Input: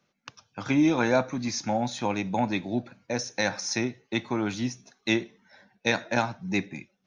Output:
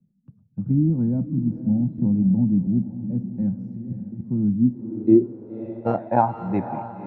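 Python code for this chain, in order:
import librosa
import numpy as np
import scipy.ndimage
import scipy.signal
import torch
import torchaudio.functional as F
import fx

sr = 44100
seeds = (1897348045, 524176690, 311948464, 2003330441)

y = fx.sample_sort(x, sr, block=32, at=(5.23, 5.97), fade=0.02)
y = fx.low_shelf(y, sr, hz=210.0, db=8.5)
y = fx.over_compress(y, sr, threshold_db=-35.0, ratio=-1.0, at=(3.59, 4.2), fade=0.02)
y = fx.echo_diffused(y, sr, ms=544, feedback_pct=46, wet_db=-11)
y = fx.filter_sweep_lowpass(y, sr, from_hz=190.0, to_hz=860.0, start_s=4.48, end_s=6.2, q=3.6)
y = fx.band_squash(y, sr, depth_pct=70, at=(1.98, 2.67))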